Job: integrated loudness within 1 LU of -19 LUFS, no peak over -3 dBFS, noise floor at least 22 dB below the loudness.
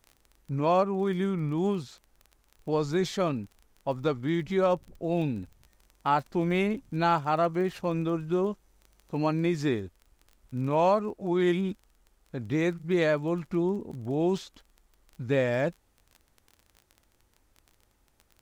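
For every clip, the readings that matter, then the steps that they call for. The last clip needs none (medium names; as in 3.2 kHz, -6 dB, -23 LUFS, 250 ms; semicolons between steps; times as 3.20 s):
tick rate 20 per s; loudness -28.5 LUFS; peak level -14.0 dBFS; loudness target -19.0 LUFS
-> de-click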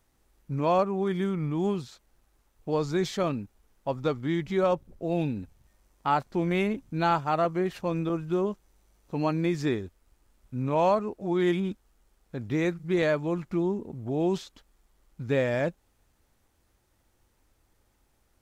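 tick rate 0.054 per s; loudness -28.5 LUFS; peak level -13.0 dBFS; loudness target -19.0 LUFS
-> trim +9.5 dB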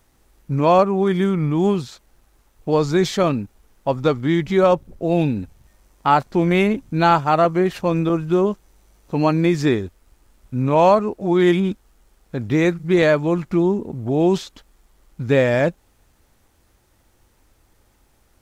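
loudness -19.0 LUFS; peak level -3.5 dBFS; noise floor -60 dBFS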